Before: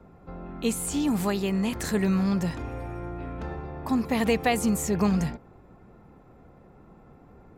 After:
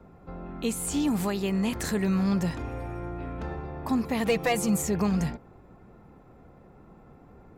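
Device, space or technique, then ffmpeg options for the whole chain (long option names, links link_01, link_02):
clipper into limiter: -filter_complex "[0:a]asoftclip=type=hard:threshold=-15dB,alimiter=limit=-18dB:level=0:latency=1:release=230,asettb=1/sr,asplit=3[link_01][link_02][link_03];[link_01]atrim=end=4.274[link_04];[link_02]atrim=start=4.27:end=4.82,asetpts=PTS-STARTPTS,afade=type=in:duration=0.004:curve=qsin,afade=type=out:start_time=0.546:duration=0.004:curve=qsin,aecho=1:1:6:0.83,atrim=end_sample=24255[link_05];[link_03]atrim=start=4.816[link_06];[link_04][link_05]acrossfade=duration=0.004:curve1=hsin:curve2=qsin[link_07];[link_07][link_06]acrossfade=duration=0.004:curve1=qsin:curve2=hsin"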